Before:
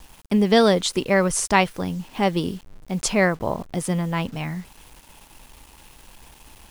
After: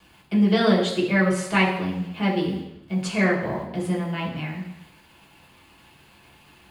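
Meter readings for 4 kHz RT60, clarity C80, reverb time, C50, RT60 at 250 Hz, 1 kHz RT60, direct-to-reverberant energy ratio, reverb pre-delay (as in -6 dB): 0.90 s, 9.0 dB, 0.85 s, 6.0 dB, 0.80 s, 0.85 s, -5.5 dB, 3 ms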